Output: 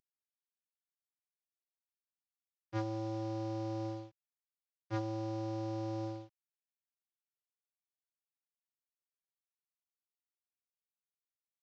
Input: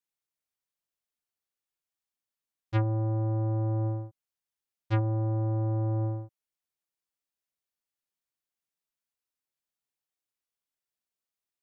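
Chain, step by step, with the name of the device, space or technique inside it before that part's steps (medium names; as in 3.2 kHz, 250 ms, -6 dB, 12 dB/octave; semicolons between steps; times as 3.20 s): early wireless headset (high-pass 150 Hz 24 dB/octave; CVSD coder 32 kbps); trim -3.5 dB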